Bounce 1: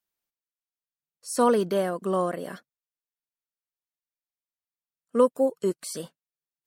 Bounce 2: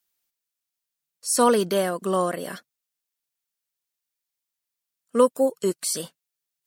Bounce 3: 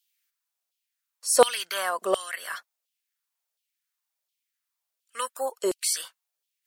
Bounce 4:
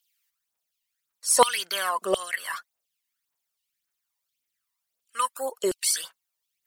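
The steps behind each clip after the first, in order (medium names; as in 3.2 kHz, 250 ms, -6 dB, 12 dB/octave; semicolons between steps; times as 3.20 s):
treble shelf 2.1 kHz +9 dB; trim +1.5 dB
LFO high-pass saw down 1.4 Hz 500–3300 Hz
phaser 1.8 Hz, delay 1.1 ms, feedback 60%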